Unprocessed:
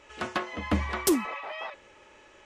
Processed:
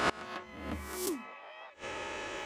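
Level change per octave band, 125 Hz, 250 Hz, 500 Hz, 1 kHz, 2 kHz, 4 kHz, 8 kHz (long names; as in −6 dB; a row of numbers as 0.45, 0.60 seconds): −11.5, −10.5, −6.0, −4.0, −3.5, −3.5, −8.0 decibels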